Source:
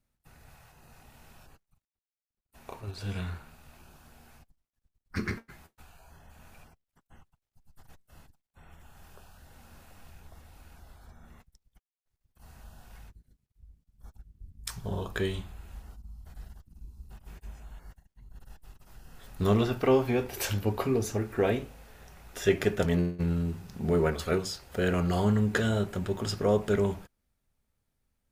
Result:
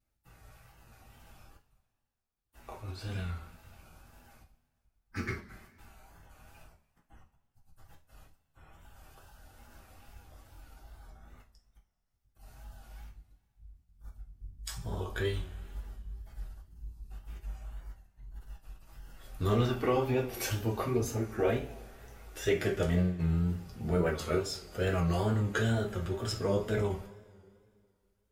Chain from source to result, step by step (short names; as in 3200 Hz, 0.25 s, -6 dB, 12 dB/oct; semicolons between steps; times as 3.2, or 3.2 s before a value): bin magnitudes rounded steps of 15 dB; two-slope reverb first 0.27 s, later 2.2 s, from -22 dB, DRR -1.5 dB; wow and flutter 69 cents; gain -5.5 dB